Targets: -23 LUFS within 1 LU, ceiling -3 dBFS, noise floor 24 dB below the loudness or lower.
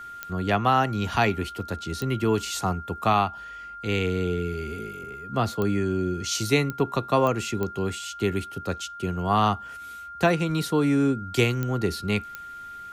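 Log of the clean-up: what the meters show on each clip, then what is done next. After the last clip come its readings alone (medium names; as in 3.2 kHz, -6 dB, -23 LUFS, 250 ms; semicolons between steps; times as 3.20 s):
clicks found 8; steady tone 1.4 kHz; tone level -37 dBFS; loudness -25.5 LUFS; peak level -9.0 dBFS; loudness target -23.0 LUFS
-> de-click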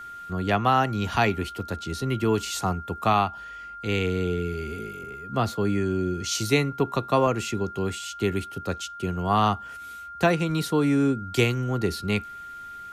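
clicks found 0; steady tone 1.4 kHz; tone level -37 dBFS
-> band-stop 1.4 kHz, Q 30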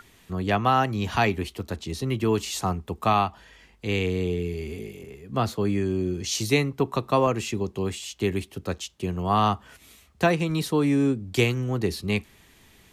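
steady tone not found; loudness -26.0 LUFS; peak level -9.0 dBFS; loudness target -23.0 LUFS
-> trim +3 dB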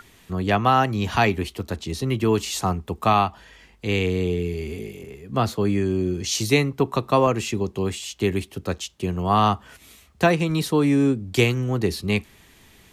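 loudness -23.0 LUFS; peak level -6.0 dBFS; noise floor -53 dBFS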